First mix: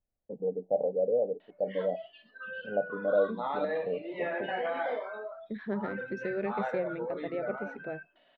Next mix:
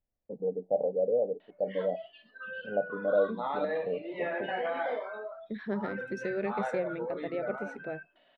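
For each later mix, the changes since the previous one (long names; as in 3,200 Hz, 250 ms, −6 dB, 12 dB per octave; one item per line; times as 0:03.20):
second voice: remove high-frequency loss of the air 150 metres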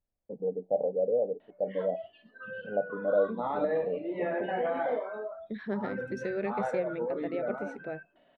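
background: add spectral tilt −3.5 dB per octave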